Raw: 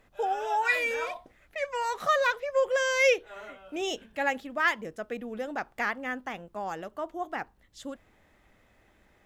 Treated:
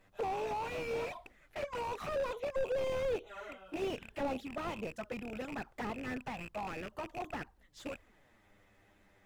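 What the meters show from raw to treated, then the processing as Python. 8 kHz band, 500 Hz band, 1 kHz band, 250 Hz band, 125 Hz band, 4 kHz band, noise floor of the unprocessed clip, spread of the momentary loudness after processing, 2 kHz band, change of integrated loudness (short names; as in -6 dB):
-14.5 dB, -7.0 dB, -10.0 dB, -2.5 dB, +5.5 dB, -11.5 dB, -64 dBFS, 11 LU, -16.0 dB, -10.0 dB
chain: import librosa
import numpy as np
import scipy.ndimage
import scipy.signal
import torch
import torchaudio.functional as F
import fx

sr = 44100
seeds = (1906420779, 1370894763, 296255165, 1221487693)

y = fx.rattle_buzz(x, sr, strikes_db=-54.0, level_db=-19.0)
y = fx.env_flanger(y, sr, rest_ms=10.9, full_db=-25.5)
y = fx.slew_limit(y, sr, full_power_hz=15.0)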